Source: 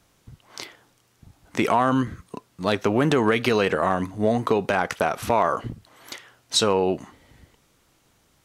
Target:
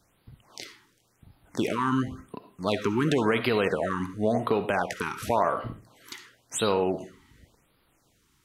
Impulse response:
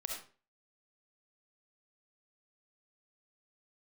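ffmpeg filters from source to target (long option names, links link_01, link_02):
-filter_complex "[0:a]asplit=2[link_01][link_02];[1:a]atrim=start_sample=2205[link_03];[link_02][link_03]afir=irnorm=-1:irlink=0,volume=-3.5dB[link_04];[link_01][link_04]amix=inputs=2:normalize=0,afftfilt=real='re*(1-between(b*sr/1024,560*pow(7300/560,0.5+0.5*sin(2*PI*0.93*pts/sr))/1.41,560*pow(7300/560,0.5+0.5*sin(2*PI*0.93*pts/sr))*1.41))':imag='im*(1-between(b*sr/1024,560*pow(7300/560,0.5+0.5*sin(2*PI*0.93*pts/sr))/1.41,560*pow(7300/560,0.5+0.5*sin(2*PI*0.93*pts/sr))*1.41))':win_size=1024:overlap=0.75,volume=-7.5dB"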